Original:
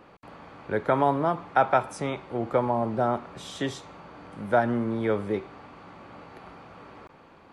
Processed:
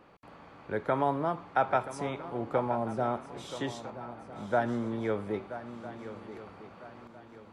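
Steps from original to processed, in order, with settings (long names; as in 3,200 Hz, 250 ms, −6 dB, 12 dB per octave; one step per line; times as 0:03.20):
0:03.90–0:04.56: high-shelf EQ 3,900 Hz −9.5 dB
feedback echo with a long and a short gap by turns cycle 1,304 ms, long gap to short 3 to 1, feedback 35%, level −13 dB
level −5.5 dB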